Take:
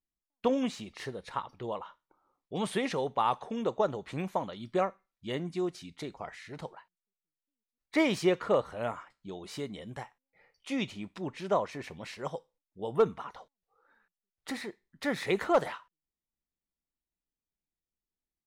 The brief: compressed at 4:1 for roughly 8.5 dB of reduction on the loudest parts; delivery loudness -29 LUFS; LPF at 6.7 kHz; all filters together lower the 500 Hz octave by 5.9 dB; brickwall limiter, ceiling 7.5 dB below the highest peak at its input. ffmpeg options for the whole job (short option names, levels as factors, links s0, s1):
-af "lowpass=6700,equalizer=f=500:t=o:g=-7.5,acompressor=threshold=0.02:ratio=4,volume=4.73,alimiter=limit=0.158:level=0:latency=1"